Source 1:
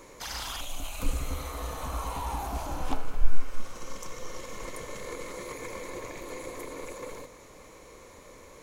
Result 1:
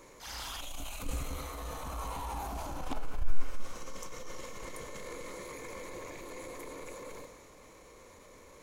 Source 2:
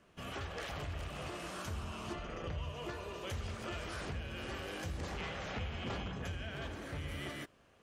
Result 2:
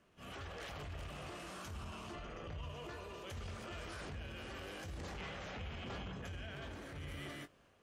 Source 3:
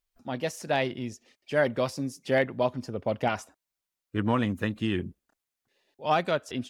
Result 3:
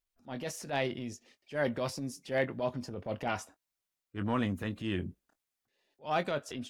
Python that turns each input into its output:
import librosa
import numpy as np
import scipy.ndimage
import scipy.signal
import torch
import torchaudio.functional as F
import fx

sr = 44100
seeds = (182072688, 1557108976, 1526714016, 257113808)

y = fx.doubler(x, sr, ms=21.0, db=-13.0)
y = fx.transient(y, sr, attack_db=-8, sustain_db=3)
y = F.gain(torch.from_numpy(y), -4.5).numpy()